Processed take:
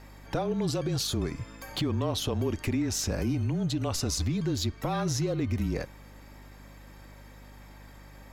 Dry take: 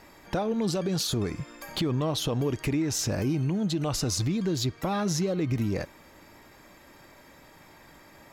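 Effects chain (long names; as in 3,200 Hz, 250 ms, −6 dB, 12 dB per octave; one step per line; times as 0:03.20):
frequency shifter −29 Hz
mains hum 50 Hz, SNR 19 dB
level −1.5 dB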